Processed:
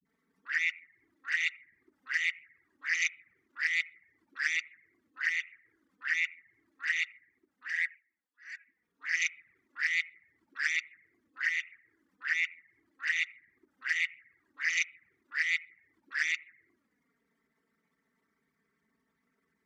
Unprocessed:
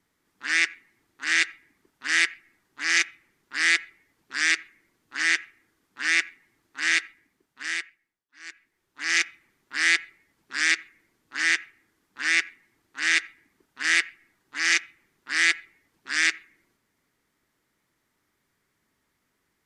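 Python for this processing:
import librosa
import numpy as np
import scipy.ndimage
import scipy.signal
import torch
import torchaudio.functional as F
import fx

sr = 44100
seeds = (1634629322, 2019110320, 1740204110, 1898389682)

y = fx.envelope_sharpen(x, sr, power=2.0)
y = scipy.signal.sosfilt(scipy.signal.butter(2, 100.0, 'highpass', fs=sr, output='sos'), y)
y = fx.env_flanger(y, sr, rest_ms=4.5, full_db=-22.5)
y = fx.dispersion(y, sr, late='highs', ms=51.0, hz=310.0)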